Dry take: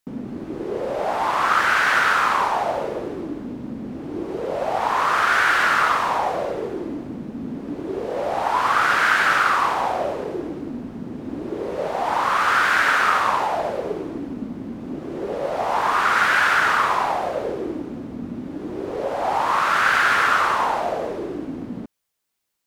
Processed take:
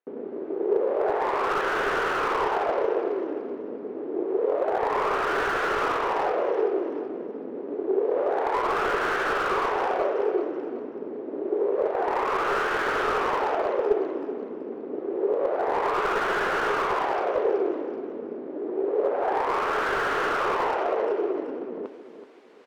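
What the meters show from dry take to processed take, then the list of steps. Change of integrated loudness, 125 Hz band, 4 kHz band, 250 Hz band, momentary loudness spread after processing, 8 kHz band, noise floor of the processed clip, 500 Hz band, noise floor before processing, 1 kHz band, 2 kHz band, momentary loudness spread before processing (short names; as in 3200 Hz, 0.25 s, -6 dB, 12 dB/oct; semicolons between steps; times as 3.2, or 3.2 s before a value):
-5.5 dB, -10.5 dB, -9.5 dB, -3.0 dB, 10 LU, under -10 dB, -37 dBFS, +2.5 dB, -35 dBFS, -6.5 dB, -9.5 dB, 15 LU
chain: LPF 1900 Hz 12 dB/oct; reverse; upward compressor, threshold -26 dBFS; reverse; added harmonics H 6 -16 dB, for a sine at -5.5 dBFS; resonant high-pass 410 Hz, resonance Q 4.7; on a send: feedback echo 0.379 s, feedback 34%, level -11.5 dB; on the sum: slew limiter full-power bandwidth 210 Hz; gain -7 dB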